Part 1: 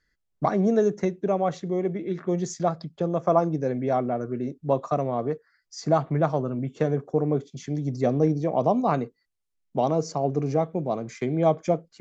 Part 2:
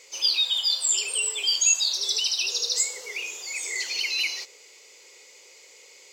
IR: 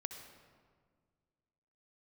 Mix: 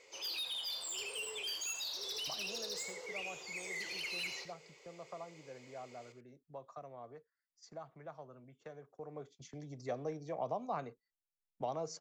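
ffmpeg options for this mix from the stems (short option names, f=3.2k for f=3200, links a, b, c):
-filter_complex "[0:a]agate=range=-8dB:threshold=-39dB:ratio=16:detection=peak,acrossover=split=130|520[a][b][c];[a]acompressor=threshold=-47dB:ratio=4[d];[b]acompressor=threshold=-45dB:ratio=4[e];[c]acompressor=threshold=-26dB:ratio=4[f];[d][e][f]amix=inputs=3:normalize=0,adelay=1850,volume=-9dB,afade=t=in:st=8.9:d=0.71:silence=0.316228[g];[1:a]lowpass=f=1.3k:p=1,asoftclip=type=tanh:threshold=-34dB,volume=-2.5dB,asplit=2[h][i];[i]volume=-10dB,aecho=0:1:83:1[j];[g][h][j]amix=inputs=3:normalize=0"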